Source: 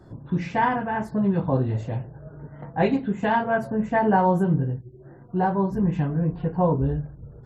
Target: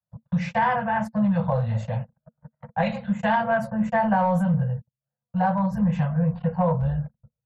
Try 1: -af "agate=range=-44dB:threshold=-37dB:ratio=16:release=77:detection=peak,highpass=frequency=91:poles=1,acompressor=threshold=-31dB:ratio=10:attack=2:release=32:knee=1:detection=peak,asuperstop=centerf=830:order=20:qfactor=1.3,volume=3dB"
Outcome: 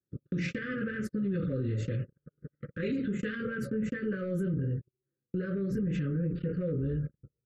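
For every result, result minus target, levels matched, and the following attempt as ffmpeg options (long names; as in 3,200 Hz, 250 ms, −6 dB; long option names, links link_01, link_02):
1,000 Hz band −20.0 dB; downward compressor: peak gain reduction +10.5 dB
-af "agate=range=-44dB:threshold=-37dB:ratio=16:release=77:detection=peak,highpass=frequency=91:poles=1,acompressor=threshold=-31dB:ratio=10:attack=2:release=32:knee=1:detection=peak,asuperstop=centerf=330:order=20:qfactor=1.3,volume=3dB"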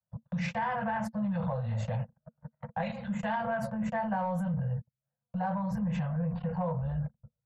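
downward compressor: peak gain reduction +10.5 dB
-af "agate=range=-44dB:threshold=-37dB:ratio=16:release=77:detection=peak,highpass=frequency=91:poles=1,acompressor=threshold=-19.5dB:ratio=10:attack=2:release=32:knee=1:detection=peak,asuperstop=centerf=330:order=20:qfactor=1.3,volume=3dB"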